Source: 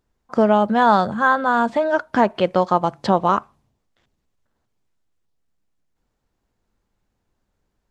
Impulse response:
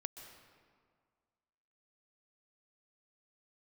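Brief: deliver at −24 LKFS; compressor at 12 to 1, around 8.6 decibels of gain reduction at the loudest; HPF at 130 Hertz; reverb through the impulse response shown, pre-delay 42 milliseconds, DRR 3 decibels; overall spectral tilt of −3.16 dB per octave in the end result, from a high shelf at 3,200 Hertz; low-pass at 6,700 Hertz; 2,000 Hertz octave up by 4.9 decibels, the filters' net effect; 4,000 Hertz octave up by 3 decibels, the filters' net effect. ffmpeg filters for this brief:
-filter_complex "[0:a]highpass=130,lowpass=6700,equalizer=frequency=2000:width_type=o:gain=8.5,highshelf=frequency=3200:gain=-7.5,equalizer=frequency=4000:width_type=o:gain=6,acompressor=threshold=-17dB:ratio=12,asplit=2[link_01][link_02];[1:a]atrim=start_sample=2205,adelay=42[link_03];[link_02][link_03]afir=irnorm=-1:irlink=0,volume=0dB[link_04];[link_01][link_04]amix=inputs=2:normalize=0,volume=-2.5dB"

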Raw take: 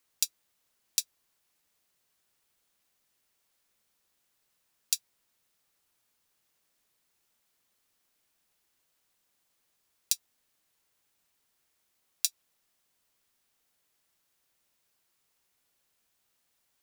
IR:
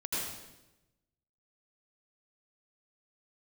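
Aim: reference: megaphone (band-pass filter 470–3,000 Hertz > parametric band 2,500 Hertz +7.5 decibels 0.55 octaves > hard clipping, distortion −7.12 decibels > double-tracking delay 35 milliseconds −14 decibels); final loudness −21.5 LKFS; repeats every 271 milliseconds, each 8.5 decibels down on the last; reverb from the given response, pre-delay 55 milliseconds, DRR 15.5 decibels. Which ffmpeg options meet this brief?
-filter_complex "[0:a]aecho=1:1:271|542|813|1084:0.376|0.143|0.0543|0.0206,asplit=2[link_01][link_02];[1:a]atrim=start_sample=2205,adelay=55[link_03];[link_02][link_03]afir=irnorm=-1:irlink=0,volume=-20.5dB[link_04];[link_01][link_04]amix=inputs=2:normalize=0,highpass=470,lowpass=3000,equalizer=frequency=2500:width_type=o:width=0.55:gain=7.5,asoftclip=type=hard:threshold=-31dB,asplit=2[link_05][link_06];[link_06]adelay=35,volume=-14dB[link_07];[link_05][link_07]amix=inputs=2:normalize=0,volume=27dB"

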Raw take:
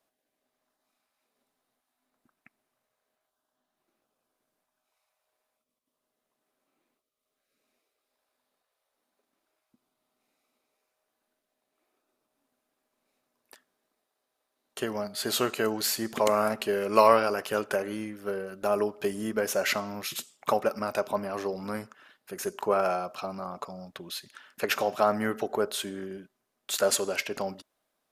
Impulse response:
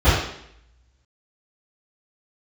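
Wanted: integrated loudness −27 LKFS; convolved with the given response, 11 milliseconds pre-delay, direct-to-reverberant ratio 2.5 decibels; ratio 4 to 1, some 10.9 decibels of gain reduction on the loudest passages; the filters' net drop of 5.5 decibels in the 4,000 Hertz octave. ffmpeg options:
-filter_complex "[0:a]equalizer=frequency=4000:width_type=o:gain=-7,acompressor=threshold=-27dB:ratio=4,asplit=2[link_01][link_02];[1:a]atrim=start_sample=2205,adelay=11[link_03];[link_02][link_03]afir=irnorm=-1:irlink=0,volume=-25.5dB[link_04];[link_01][link_04]amix=inputs=2:normalize=0,volume=4dB"

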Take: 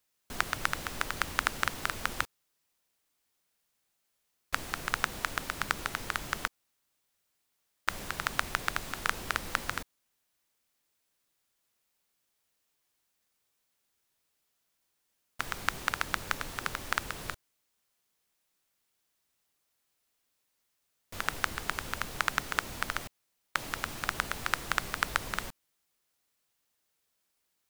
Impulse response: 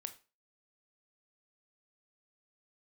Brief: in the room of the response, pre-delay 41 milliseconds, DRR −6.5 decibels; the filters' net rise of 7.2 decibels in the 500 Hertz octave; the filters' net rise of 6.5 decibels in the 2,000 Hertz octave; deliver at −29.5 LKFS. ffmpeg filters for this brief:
-filter_complex "[0:a]equalizer=frequency=500:width_type=o:gain=8.5,equalizer=frequency=2000:width_type=o:gain=8,asplit=2[link_01][link_02];[1:a]atrim=start_sample=2205,adelay=41[link_03];[link_02][link_03]afir=irnorm=-1:irlink=0,volume=10dB[link_04];[link_01][link_04]amix=inputs=2:normalize=0,volume=-8dB"

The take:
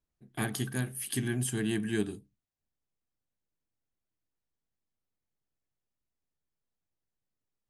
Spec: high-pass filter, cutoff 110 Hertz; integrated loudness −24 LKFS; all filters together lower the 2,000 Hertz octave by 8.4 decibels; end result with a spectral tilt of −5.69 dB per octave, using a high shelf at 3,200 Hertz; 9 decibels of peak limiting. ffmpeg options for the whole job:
ffmpeg -i in.wav -af "highpass=110,equalizer=frequency=2000:width_type=o:gain=-9,highshelf=frequency=3200:gain=-7.5,volume=13.5dB,alimiter=limit=-13dB:level=0:latency=1" out.wav

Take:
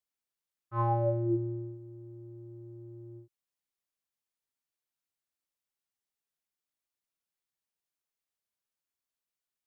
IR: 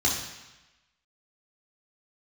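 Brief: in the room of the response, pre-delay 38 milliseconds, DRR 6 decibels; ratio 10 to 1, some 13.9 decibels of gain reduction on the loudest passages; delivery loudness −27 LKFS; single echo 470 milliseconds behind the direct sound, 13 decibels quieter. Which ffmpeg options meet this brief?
-filter_complex "[0:a]acompressor=threshold=-39dB:ratio=10,aecho=1:1:470:0.224,asplit=2[link_01][link_02];[1:a]atrim=start_sample=2205,adelay=38[link_03];[link_02][link_03]afir=irnorm=-1:irlink=0,volume=-17.5dB[link_04];[link_01][link_04]amix=inputs=2:normalize=0,volume=17.5dB"

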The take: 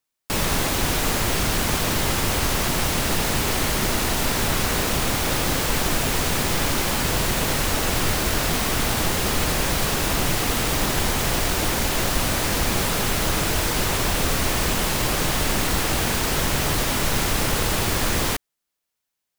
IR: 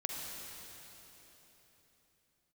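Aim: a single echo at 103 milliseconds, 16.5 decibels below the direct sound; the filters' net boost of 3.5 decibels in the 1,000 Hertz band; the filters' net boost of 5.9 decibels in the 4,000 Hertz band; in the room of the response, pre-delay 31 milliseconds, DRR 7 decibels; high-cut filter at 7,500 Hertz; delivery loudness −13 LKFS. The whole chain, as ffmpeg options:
-filter_complex "[0:a]lowpass=7500,equalizer=frequency=1000:width_type=o:gain=4,equalizer=frequency=4000:width_type=o:gain=7.5,aecho=1:1:103:0.15,asplit=2[link_01][link_02];[1:a]atrim=start_sample=2205,adelay=31[link_03];[link_02][link_03]afir=irnorm=-1:irlink=0,volume=-9dB[link_04];[link_01][link_04]amix=inputs=2:normalize=0,volume=6dB"

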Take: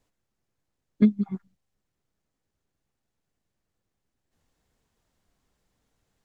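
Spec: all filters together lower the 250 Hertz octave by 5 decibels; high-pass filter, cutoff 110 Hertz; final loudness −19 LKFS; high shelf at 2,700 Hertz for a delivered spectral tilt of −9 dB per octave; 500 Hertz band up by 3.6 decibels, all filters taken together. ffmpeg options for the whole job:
ffmpeg -i in.wav -af "highpass=110,equalizer=frequency=250:width_type=o:gain=-7,equalizer=frequency=500:width_type=o:gain=7.5,highshelf=frequency=2700:gain=-8,volume=10.5dB" out.wav

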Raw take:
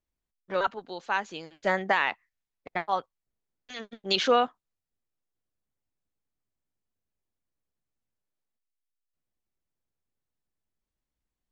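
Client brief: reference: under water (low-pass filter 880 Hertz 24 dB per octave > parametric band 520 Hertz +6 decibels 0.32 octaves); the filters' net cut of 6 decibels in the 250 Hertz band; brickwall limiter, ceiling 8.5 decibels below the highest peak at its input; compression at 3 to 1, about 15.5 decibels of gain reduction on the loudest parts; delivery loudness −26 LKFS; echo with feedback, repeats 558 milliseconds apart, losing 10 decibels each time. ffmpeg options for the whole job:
ffmpeg -i in.wav -af "equalizer=frequency=250:width_type=o:gain=-9,acompressor=threshold=-41dB:ratio=3,alimiter=level_in=8dB:limit=-24dB:level=0:latency=1,volume=-8dB,lowpass=frequency=880:width=0.5412,lowpass=frequency=880:width=1.3066,equalizer=frequency=520:width_type=o:width=0.32:gain=6,aecho=1:1:558|1116|1674|2232:0.316|0.101|0.0324|0.0104,volume=21dB" out.wav

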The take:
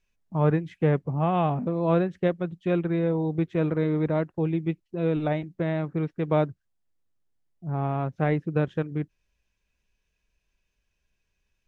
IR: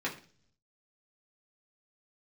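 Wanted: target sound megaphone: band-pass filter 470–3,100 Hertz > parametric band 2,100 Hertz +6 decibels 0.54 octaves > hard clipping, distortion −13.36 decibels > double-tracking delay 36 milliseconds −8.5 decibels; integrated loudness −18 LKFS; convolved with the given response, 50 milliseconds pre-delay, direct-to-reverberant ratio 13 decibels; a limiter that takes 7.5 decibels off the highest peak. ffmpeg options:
-filter_complex "[0:a]alimiter=limit=-19dB:level=0:latency=1,asplit=2[link_01][link_02];[1:a]atrim=start_sample=2205,adelay=50[link_03];[link_02][link_03]afir=irnorm=-1:irlink=0,volume=-19dB[link_04];[link_01][link_04]amix=inputs=2:normalize=0,highpass=470,lowpass=3100,equalizer=frequency=2100:width_type=o:width=0.54:gain=6,asoftclip=type=hard:threshold=-27dB,asplit=2[link_05][link_06];[link_06]adelay=36,volume=-8.5dB[link_07];[link_05][link_07]amix=inputs=2:normalize=0,volume=16.5dB"

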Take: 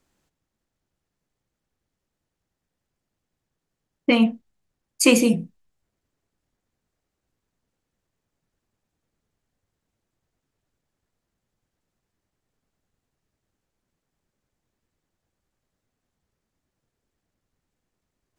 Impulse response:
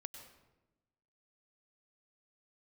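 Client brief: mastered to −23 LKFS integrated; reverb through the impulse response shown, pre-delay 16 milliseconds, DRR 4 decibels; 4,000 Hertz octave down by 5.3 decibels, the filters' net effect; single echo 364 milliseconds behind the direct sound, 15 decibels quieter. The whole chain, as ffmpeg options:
-filter_complex "[0:a]equalizer=frequency=4000:width_type=o:gain=-8,aecho=1:1:364:0.178,asplit=2[link_01][link_02];[1:a]atrim=start_sample=2205,adelay=16[link_03];[link_02][link_03]afir=irnorm=-1:irlink=0,volume=0dB[link_04];[link_01][link_04]amix=inputs=2:normalize=0,volume=-2.5dB"

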